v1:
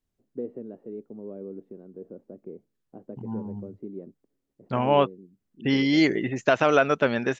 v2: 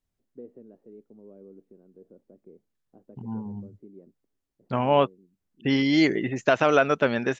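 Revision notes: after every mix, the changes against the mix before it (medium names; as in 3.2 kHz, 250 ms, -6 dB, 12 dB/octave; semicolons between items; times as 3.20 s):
first voice -10.0 dB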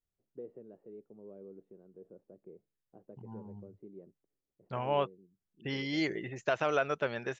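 second voice -9.5 dB; master: add peaking EQ 250 Hz -9.5 dB 0.44 oct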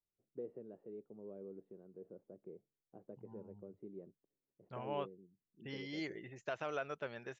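second voice -10.5 dB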